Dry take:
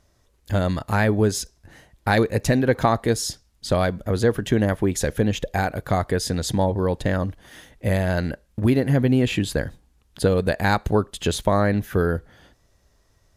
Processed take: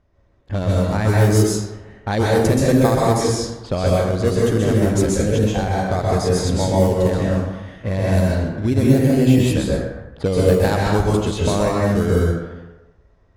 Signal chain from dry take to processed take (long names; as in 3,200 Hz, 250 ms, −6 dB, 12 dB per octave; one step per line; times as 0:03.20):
in parallel at −9 dB: sample-and-hold swept by an LFO 21×, swing 60% 0.28 Hz
on the sum: high-shelf EQ 7,300 Hz +8.5 dB
dense smooth reverb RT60 1 s, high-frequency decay 0.65×, pre-delay 115 ms, DRR −4.5 dB
dynamic equaliser 2,000 Hz, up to −4 dB, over −31 dBFS, Q 0.72
low-pass that shuts in the quiet parts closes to 2,100 Hz, open at −6.5 dBFS
level −3.5 dB